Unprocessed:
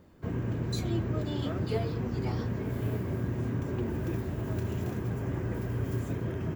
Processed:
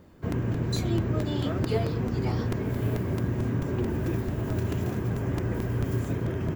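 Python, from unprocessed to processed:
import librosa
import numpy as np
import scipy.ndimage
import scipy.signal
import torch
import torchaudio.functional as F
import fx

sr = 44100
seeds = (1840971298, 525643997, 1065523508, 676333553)

y = fx.buffer_crackle(x, sr, first_s=0.32, period_s=0.22, block=128, kind='repeat')
y = F.gain(torch.from_numpy(y), 4.0).numpy()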